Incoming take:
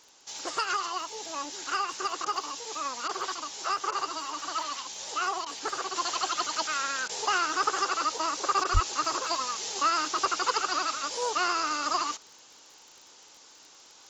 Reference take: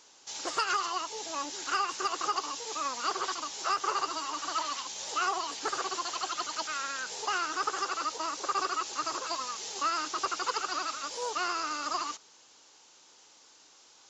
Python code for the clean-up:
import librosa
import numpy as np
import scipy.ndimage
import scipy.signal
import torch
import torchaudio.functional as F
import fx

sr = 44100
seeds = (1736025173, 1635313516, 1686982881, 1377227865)

y = fx.fix_declick_ar(x, sr, threshold=6.5)
y = fx.highpass(y, sr, hz=140.0, slope=24, at=(8.73, 8.85), fade=0.02)
y = fx.fix_interpolate(y, sr, at_s=(2.25, 3.08, 3.91, 5.45, 7.08, 8.64), length_ms=11.0)
y = fx.fix_level(y, sr, at_s=5.96, step_db=-4.5)